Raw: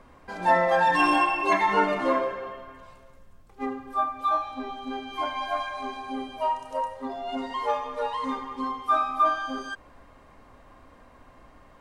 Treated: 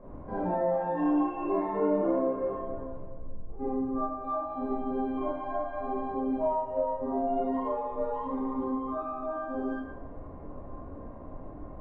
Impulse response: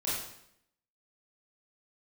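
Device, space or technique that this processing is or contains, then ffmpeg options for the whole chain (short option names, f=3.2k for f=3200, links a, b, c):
television next door: -filter_complex "[0:a]bandreject=f=50:t=h:w=6,bandreject=f=100:t=h:w=6,bandreject=f=150:t=h:w=6,bandreject=f=200:t=h:w=6,asettb=1/sr,asplit=3[a][b][c];[a]atrim=end=2.574[d];[b]atrim=start=2.57:end=3.97,asetpts=PTS-STARTPTS,afade=t=in:d=0.004:c=qsin,afade=t=out:st=1.396:d=0.004:c=qsin,equalizer=f=3k:t=o:w=2.5:g=-5.5[e];[c]atrim=start=3.966[f];[d][e]acrossfade=d=0.004:c1=hsin:c2=qsin[g];[g][f]acrossfade=d=0.004:c1=qsin:c2=hsin,acompressor=threshold=-36dB:ratio=4,lowpass=590[h];[1:a]atrim=start_sample=2205[i];[h][i]afir=irnorm=-1:irlink=0,volume=6dB"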